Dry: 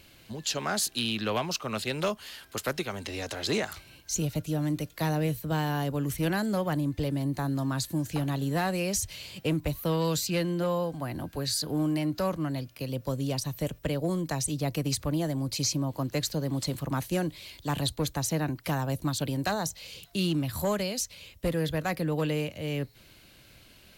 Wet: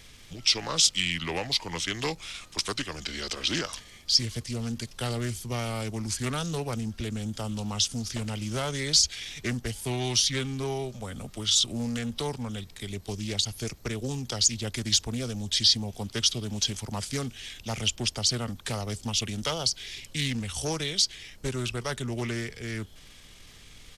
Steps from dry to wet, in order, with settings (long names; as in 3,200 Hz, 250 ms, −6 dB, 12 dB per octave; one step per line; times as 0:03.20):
parametric band 7,100 Hz +14.5 dB 1.9 octaves
pitch shifter −4.5 semitones
background noise brown −48 dBFS
highs frequency-modulated by the lows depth 0.27 ms
level −3.5 dB